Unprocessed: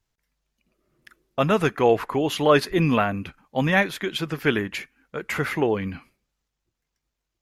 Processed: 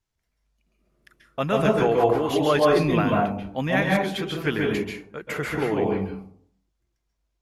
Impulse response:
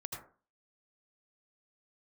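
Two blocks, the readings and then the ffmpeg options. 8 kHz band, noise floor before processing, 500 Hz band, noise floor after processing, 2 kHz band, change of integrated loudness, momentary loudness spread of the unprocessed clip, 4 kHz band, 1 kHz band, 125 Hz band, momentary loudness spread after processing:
−2.0 dB, −82 dBFS, +1.0 dB, −77 dBFS, −2.0 dB, −0.5 dB, 14 LU, −2.0 dB, +0.5 dB, 0.0 dB, 13 LU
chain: -filter_complex "[1:a]atrim=start_sample=2205,asetrate=25137,aresample=44100[link_01];[0:a][link_01]afir=irnorm=-1:irlink=0,volume=-3dB"

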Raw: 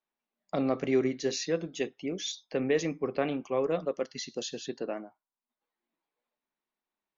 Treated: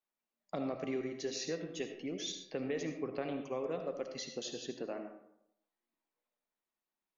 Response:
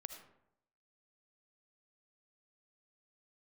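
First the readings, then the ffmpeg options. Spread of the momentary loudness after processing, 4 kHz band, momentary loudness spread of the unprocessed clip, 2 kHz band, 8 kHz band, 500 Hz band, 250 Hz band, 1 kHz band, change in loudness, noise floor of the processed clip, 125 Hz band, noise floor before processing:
5 LU, −5.5 dB, 9 LU, −8.0 dB, can't be measured, −8.5 dB, −8.0 dB, −7.5 dB, −8.0 dB, below −85 dBFS, −8.0 dB, below −85 dBFS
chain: -filter_complex "[0:a]acompressor=threshold=-30dB:ratio=3[link_01];[1:a]atrim=start_sample=2205[link_02];[link_01][link_02]afir=irnorm=-1:irlink=0"

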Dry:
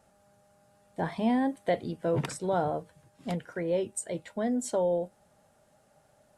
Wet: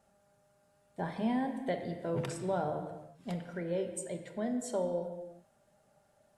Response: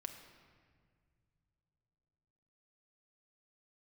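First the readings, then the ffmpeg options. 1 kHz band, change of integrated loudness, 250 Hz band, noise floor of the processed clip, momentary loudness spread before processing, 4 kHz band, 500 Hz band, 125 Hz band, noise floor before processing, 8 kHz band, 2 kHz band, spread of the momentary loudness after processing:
−5.5 dB, −5.5 dB, −4.5 dB, −70 dBFS, 9 LU, −5.5 dB, −5.5 dB, −4.0 dB, −65 dBFS, −6.0 dB, −5.0 dB, 11 LU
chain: -filter_complex "[1:a]atrim=start_sample=2205,afade=type=out:start_time=0.43:duration=0.01,atrim=end_sample=19404[link_01];[0:a][link_01]afir=irnorm=-1:irlink=0,volume=-2dB"

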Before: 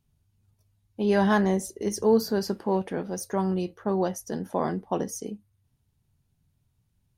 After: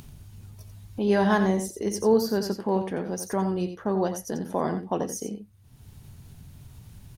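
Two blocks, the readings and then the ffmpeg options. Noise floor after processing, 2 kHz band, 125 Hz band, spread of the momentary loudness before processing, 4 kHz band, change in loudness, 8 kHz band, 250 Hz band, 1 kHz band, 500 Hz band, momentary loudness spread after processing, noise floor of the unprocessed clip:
−52 dBFS, +0.5 dB, +0.5 dB, 11 LU, +0.5 dB, +0.5 dB, +1.0 dB, +0.5 dB, +0.5 dB, +0.5 dB, 15 LU, −72 dBFS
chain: -af "acompressor=mode=upward:threshold=-27dB:ratio=2.5,aecho=1:1:88:0.355"

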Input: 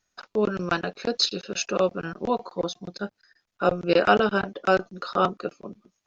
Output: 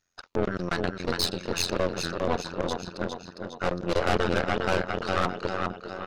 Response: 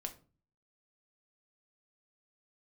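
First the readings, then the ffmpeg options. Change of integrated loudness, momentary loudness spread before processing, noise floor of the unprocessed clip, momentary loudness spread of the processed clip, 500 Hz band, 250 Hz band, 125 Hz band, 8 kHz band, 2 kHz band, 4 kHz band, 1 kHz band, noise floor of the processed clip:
−3.5 dB, 15 LU, −80 dBFS, 8 LU, −4.0 dB, −2.5 dB, +2.0 dB, can't be measured, −2.0 dB, −2.5 dB, −3.5 dB, −52 dBFS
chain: -af "aecho=1:1:407|814|1221|1628|2035|2442:0.501|0.261|0.136|0.0705|0.0366|0.0191,aeval=exprs='(tanh(15.8*val(0)+0.8)-tanh(0.8))/15.8':channel_layout=same,tremolo=f=88:d=0.919,volume=6.5dB"

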